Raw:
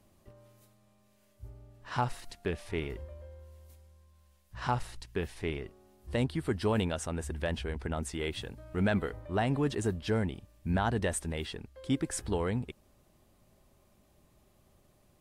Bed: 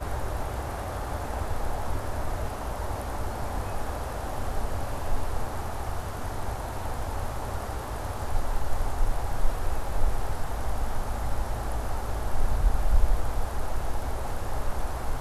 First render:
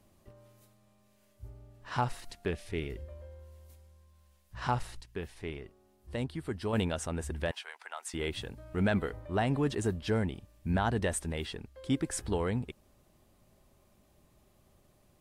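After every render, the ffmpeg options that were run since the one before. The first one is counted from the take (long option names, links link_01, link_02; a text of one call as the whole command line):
ffmpeg -i in.wav -filter_complex "[0:a]asettb=1/sr,asplit=3[link_01][link_02][link_03];[link_01]atrim=end=2.554[link_04];[link_02]atrim=start=2.55:end=3.08,asetpts=PTS-STARTPTS,afade=type=in:duration=0.004:curve=qsin,afade=type=out:start_time=0.526:duration=0.004:curve=qsin,equalizer=frequency=1000:width=1.4:gain=-10.5[link_05];[link_03]atrim=start=3.076[link_06];[link_04][link_05]acrossfade=duration=0.004:curve1=hsin:curve2=qsin[link_07];[link_07][link_06]acrossfade=duration=0.004:curve1=qsin:curve2=hsin,asettb=1/sr,asplit=3[link_08][link_09][link_10];[link_08]atrim=end=7.514[link_11];[link_09]atrim=start=7.51:end=8.14,asetpts=PTS-STARTPTS,afade=type=in:duration=0.004:curve=qsin,afade=type=out:start_time=0.626:duration=0.004:curve=qsin,highpass=frequency=810:width=0.5412,highpass=frequency=810:width=1.3066[link_12];[link_10]atrim=start=8.136[link_13];[link_11][link_12]acrossfade=duration=0.004:curve1=hsin:curve2=qsin[link_14];[link_14][link_13]acrossfade=duration=0.004:curve1=qsin:curve2=hsin,asplit=3[link_15][link_16][link_17];[link_15]atrim=end=5.012[link_18];[link_16]atrim=start=5.008:end=6.732,asetpts=PTS-STARTPTS,volume=-5dB[link_19];[link_17]atrim=start=6.728[link_20];[link_18][link_19]acrossfade=duration=0.004:curve1=hsin:curve2=hsin[link_21];[link_21][link_20]acrossfade=duration=0.004:curve1=hsin:curve2=hsin" out.wav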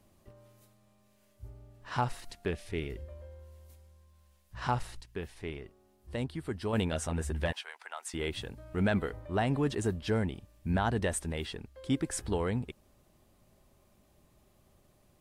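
ffmpeg -i in.wav -filter_complex "[0:a]asettb=1/sr,asplit=3[link_01][link_02][link_03];[link_01]atrim=end=6.914[link_04];[link_02]atrim=start=6.91:end=7.61,asetpts=PTS-STARTPTS,afade=type=in:duration=0.004:curve=qsin,afade=type=out:start_time=0.696:duration=0.004:curve=qsin,asplit=2[link_05][link_06];[link_06]adelay=13,volume=-4dB[link_07];[link_05][link_07]amix=inputs=2:normalize=0,atrim=end_sample=30870[link_08];[link_03]atrim=start=7.606[link_09];[link_04][link_08]acrossfade=duration=0.004:curve1=hsin:curve2=qsin[link_10];[link_10][link_09]acrossfade=duration=0.004:curve1=qsin:curve2=hsin" out.wav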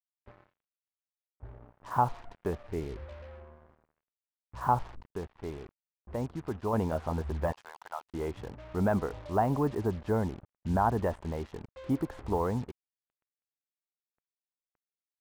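ffmpeg -i in.wav -af "lowpass=frequency=990:width_type=q:width=2.3,acrusher=bits=7:mix=0:aa=0.5" out.wav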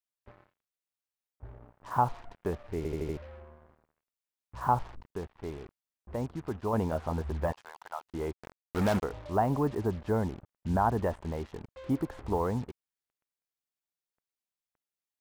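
ffmpeg -i in.wav -filter_complex "[0:a]asplit=3[link_01][link_02][link_03];[link_01]afade=type=out:start_time=8.31:duration=0.02[link_04];[link_02]acrusher=bits=4:mix=0:aa=0.5,afade=type=in:start_time=8.31:duration=0.02,afade=type=out:start_time=9.02:duration=0.02[link_05];[link_03]afade=type=in:start_time=9.02:duration=0.02[link_06];[link_04][link_05][link_06]amix=inputs=3:normalize=0,asplit=6[link_07][link_08][link_09][link_10][link_11][link_12];[link_07]atrim=end=2.852[link_13];[link_08]atrim=start=2.768:end=2.852[link_14];[link_09]atrim=start=2.768:end=2.852[link_15];[link_10]atrim=start=2.768:end=2.852[link_16];[link_11]atrim=start=2.768:end=2.852[link_17];[link_12]atrim=start=3.168[link_18];[link_13][link_14]acrossfade=duration=0.004:curve1=hsin:curve2=hsin[link_19];[link_19][link_15]acrossfade=duration=0.004:curve1=hsin:curve2=hsin[link_20];[link_20][link_16]acrossfade=duration=0.004:curve1=hsin:curve2=hsin[link_21];[link_21][link_17]acrossfade=duration=0.004:curve1=hsin:curve2=hsin[link_22];[link_22][link_18]acrossfade=duration=0.004:curve1=hsin:curve2=hsin" out.wav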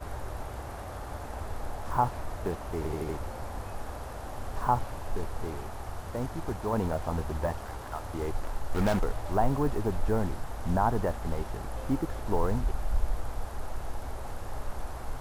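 ffmpeg -i in.wav -i bed.wav -filter_complex "[1:a]volume=-6.5dB[link_01];[0:a][link_01]amix=inputs=2:normalize=0" out.wav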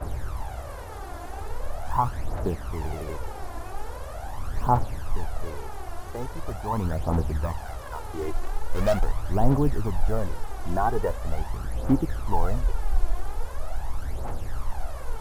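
ffmpeg -i in.wav -af "aphaser=in_gain=1:out_gain=1:delay=3:decay=0.61:speed=0.42:type=triangular" out.wav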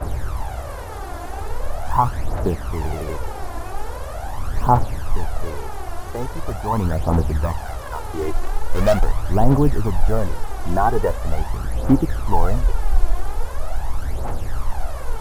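ffmpeg -i in.wav -af "volume=6.5dB,alimiter=limit=-2dB:level=0:latency=1" out.wav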